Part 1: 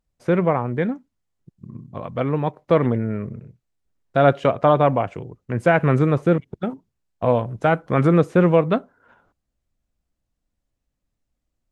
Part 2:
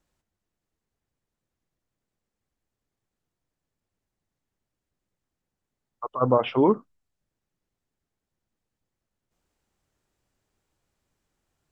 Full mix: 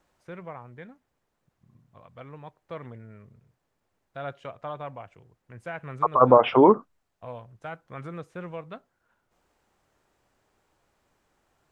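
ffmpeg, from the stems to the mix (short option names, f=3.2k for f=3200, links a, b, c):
-filter_complex "[0:a]equalizer=f=280:w=0.54:g=-9.5,volume=-15.5dB[a];[1:a]equalizer=f=900:w=0.38:g=9.5,volume=2.5dB[b];[a][b]amix=inputs=2:normalize=0,acompressor=threshold=-20dB:ratio=1.5"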